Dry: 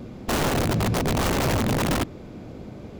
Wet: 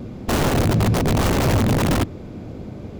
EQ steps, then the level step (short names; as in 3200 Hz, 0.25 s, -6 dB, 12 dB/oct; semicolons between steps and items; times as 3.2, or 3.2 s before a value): bell 95 Hz +4 dB 0.32 oct; low shelf 500 Hz +4 dB; +1.5 dB